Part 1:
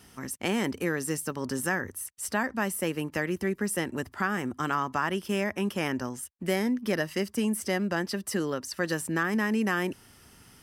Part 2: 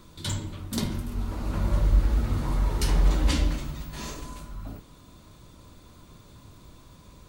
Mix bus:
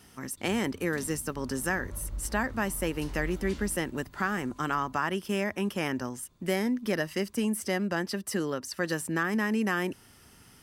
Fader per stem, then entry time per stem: -1.0 dB, -16.5 dB; 0.00 s, 0.20 s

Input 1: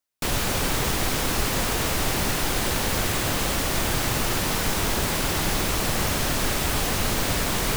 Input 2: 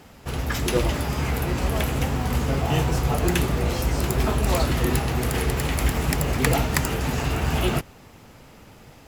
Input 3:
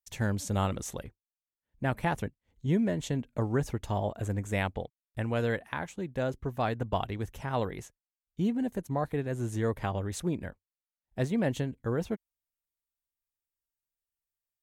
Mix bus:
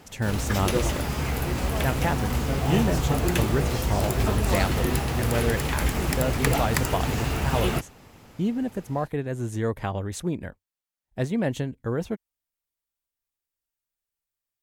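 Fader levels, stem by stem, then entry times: -15.5 dB, -2.5 dB, +3.0 dB; 0.00 s, 0.00 s, 0.00 s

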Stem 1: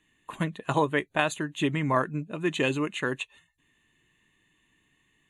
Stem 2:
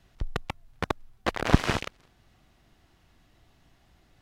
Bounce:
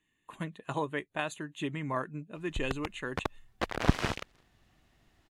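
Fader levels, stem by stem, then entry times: -8.5 dB, -5.0 dB; 0.00 s, 2.35 s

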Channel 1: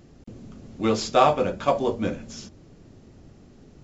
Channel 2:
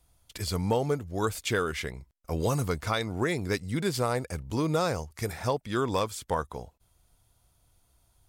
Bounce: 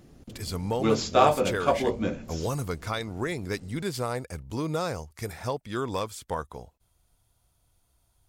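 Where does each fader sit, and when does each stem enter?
-2.0 dB, -2.5 dB; 0.00 s, 0.00 s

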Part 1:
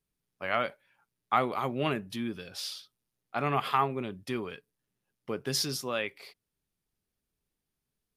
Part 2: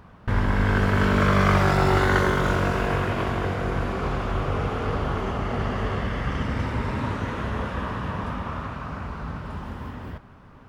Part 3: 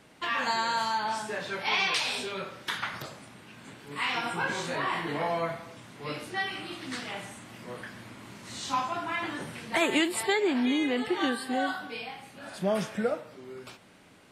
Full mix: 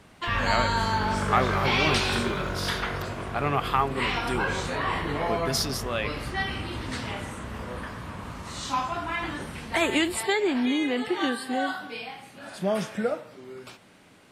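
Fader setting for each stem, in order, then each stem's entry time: +2.5 dB, -9.0 dB, +1.5 dB; 0.00 s, 0.00 s, 0.00 s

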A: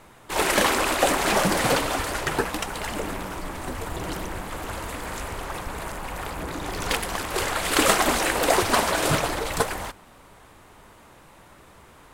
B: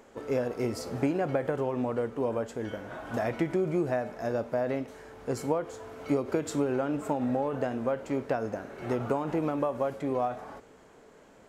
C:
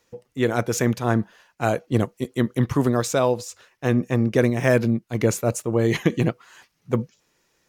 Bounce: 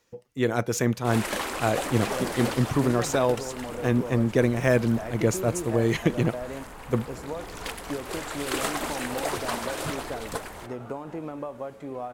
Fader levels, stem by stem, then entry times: -9.5 dB, -6.0 dB, -3.0 dB; 0.75 s, 1.80 s, 0.00 s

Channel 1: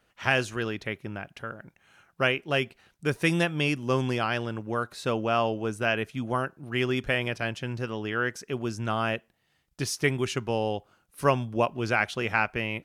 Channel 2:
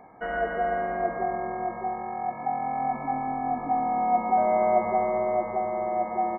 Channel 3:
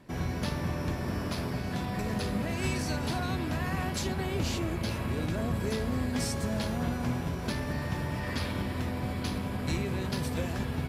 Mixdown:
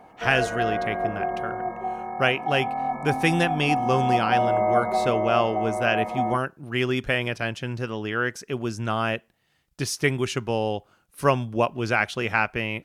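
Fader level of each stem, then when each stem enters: +2.5 dB, +0.5 dB, mute; 0.00 s, 0.00 s, mute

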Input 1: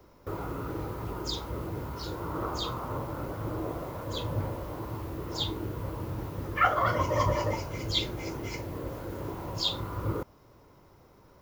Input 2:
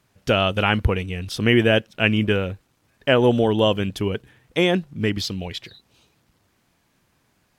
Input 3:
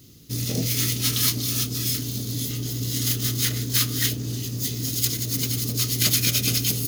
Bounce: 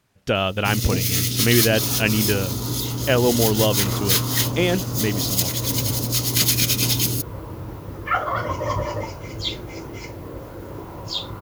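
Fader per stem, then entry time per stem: +2.0 dB, -2.0 dB, +2.0 dB; 1.50 s, 0.00 s, 0.35 s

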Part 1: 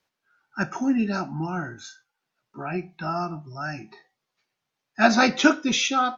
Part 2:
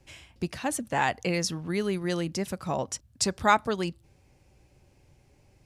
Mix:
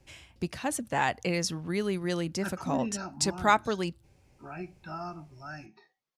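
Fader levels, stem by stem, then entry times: -10.5 dB, -1.5 dB; 1.85 s, 0.00 s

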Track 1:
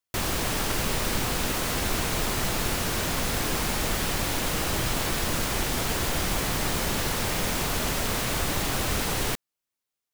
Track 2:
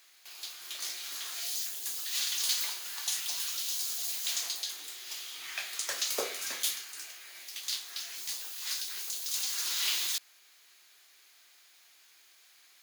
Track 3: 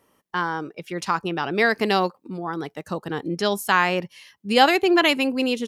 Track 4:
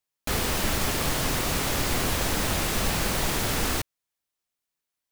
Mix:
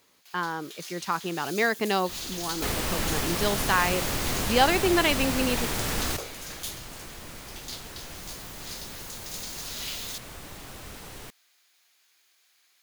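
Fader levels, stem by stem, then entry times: -15.5 dB, -5.0 dB, -5.0 dB, -3.0 dB; 1.95 s, 0.00 s, 0.00 s, 2.35 s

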